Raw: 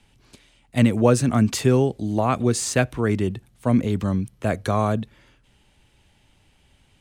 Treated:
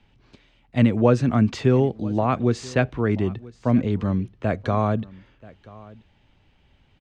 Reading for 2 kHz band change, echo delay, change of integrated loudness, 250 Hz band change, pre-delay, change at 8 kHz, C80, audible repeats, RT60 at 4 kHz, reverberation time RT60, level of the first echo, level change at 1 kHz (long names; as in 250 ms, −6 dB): −1.5 dB, 982 ms, −0.5 dB, 0.0 dB, no reverb audible, −15.0 dB, no reverb audible, 1, no reverb audible, no reverb audible, −21.5 dB, −1.0 dB